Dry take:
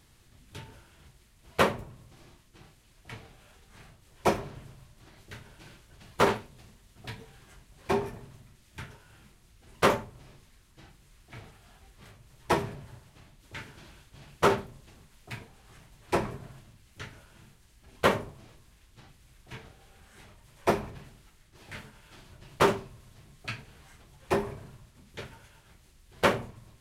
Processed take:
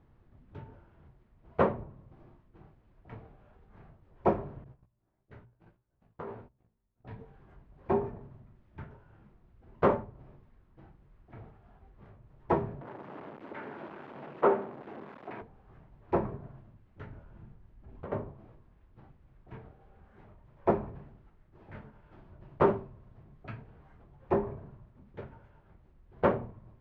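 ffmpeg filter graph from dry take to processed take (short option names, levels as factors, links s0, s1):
-filter_complex "[0:a]asettb=1/sr,asplit=3[s0][s1][s2];[s0]atrim=end=4.644[s3];[s1]atrim=start=4.64:end=7.11,asetpts=PTS-STARTPTS,afade=t=in:d=0.004:c=qsin,afade=t=out:st=2.466:d=0.004:c=qsin,agate=range=0.112:threshold=0.00316:ratio=16:release=100:detection=peak,flanger=delay=15.5:depth=2.8:speed=1.6,acompressor=threshold=0.0158:ratio=6:attack=3.2:release=140:knee=1:detection=peak[s4];[s2]atrim=start=7.106[s5];[s3][s4]acrossfade=d=0.004:c1=hsin:c2=qsin[s6];[s6][s5]acrossfade=d=0.004:c1=qsin:c2=hsin,asettb=1/sr,asplit=3[s7][s8][s9];[s7]atrim=end=12.814[s10];[s8]atrim=start=12.81:end=15.42,asetpts=PTS-STARTPTS,afade=t=in:d=0.004:c=qsin,afade=t=out:st=2.606:d=0.004:c=qsin,aeval=exprs='val(0)+0.5*0.0266*sgn(val(0))':c=same,highpass=170,acrossover=split=220 3700:gain=0.2 1 0.224[s11][s12][s13];[s11][s12][s13]amix=inputs=3:normalize=0[s14];[s9]atrim=start=15.416[s15];[s10][s14]acrossfade=d=0.004:c1=hsin:c2=qsin[s16];[s16][s15]acrossfade=d=0.004:c1=qsin:c2=hsin,asettb=1/sr,asplit=3[s17][s18][s19];[s17]atrim=end=17.084[s20];[s18]atrim=start=17.08:end=18.12,asetpts=PTS-STARTPTS,afade=t=in:d=0.004:c=qsin,afade=t=out:st=1.036:d=0.004:c=qsin,acompressor=threshold=0.00708:ratio=4:attack=3.2:release=140:knee=1:detection=peak,lowshelf=f=190:g=7.5[s21];[s19]atrim=start=18.116[s22];[s20][s21]acrossfade=d=0.004:c1=hsin:c2=qsin[s23];[s23][s22]acrossfade=d=0.004:c1=qsin:c2=hsin,lowpass=1000,bandreject=f=60:t=h:w=6,bandreject=f=120:t=h:w=6"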